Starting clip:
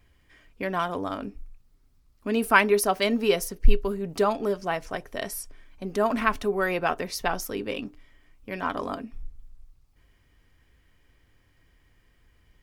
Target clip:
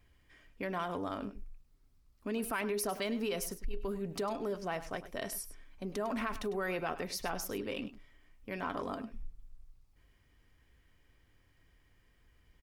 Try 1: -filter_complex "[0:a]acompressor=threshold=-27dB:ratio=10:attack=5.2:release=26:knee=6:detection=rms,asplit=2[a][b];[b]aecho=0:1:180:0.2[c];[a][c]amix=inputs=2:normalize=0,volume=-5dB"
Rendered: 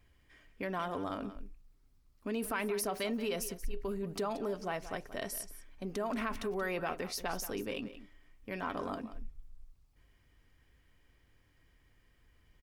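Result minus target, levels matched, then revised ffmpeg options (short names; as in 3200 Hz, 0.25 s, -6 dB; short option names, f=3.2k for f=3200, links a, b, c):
echo 78 ms late
-filter_complex "[0:a]acompressor=threshold=-27dB:ratio=10:attack=5.2:release=26:knee=6:detection=rms,asplit=2[a][b];[b]aecho=0:1:102:0.2[c];[a][c]amix=inputs=2:normalize=0,volume=-5dB"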